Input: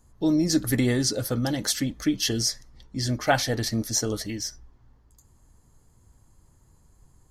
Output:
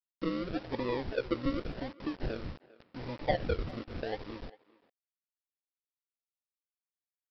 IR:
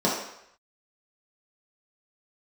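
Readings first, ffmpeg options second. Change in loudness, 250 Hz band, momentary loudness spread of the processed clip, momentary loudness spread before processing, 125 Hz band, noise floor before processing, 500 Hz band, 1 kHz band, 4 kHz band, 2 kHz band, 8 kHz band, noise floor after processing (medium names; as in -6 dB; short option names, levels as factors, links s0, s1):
-11.0 dB, -11.5 dB, 13 LU, 9 LU, -12.5 dB, -60 dBFS, -5.5 dB, -7.5 dB, -18.0 dB, -10.5 dB, under -40 dB, under -85 dBFS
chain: -filter_complex "[0:a]asplit=3[s0][s1][s2];[s0]bandpass=f=530:t=q:w=8,volume=1[s3];[s1]bandpass=f=1840:t=q:w=8,volume=0.501[s4];[s2]bandpass=f=2480:t=q:w=8,volume=0.355[s5];[s3][s4][s5]amix=inputs=3:normalize=0,asplit=2[s6][s7];[s7]acompressor=threshold=0.00251:ratio=4,volume=0.891[s8];[s6][s8]amix=inputs=2:normalize=0,acrusher=samples=42:mix=1:aa=0.000001:lfo=1:lforange=25.2:lforate=0.87,aemphasis=mode=reproduction:type=bsi,aresample=11025,acrusher=bits=7:mix=0:aa=0.000001,aresample=44100,asplit=2[s9][s10];[s10]adelay=400,highpass=300,lowpass=3400,asoftclip=type=hard:threshold=0.0596,volume=0.1[s11];[s9][s11]amix=inputs=2:normalize=0"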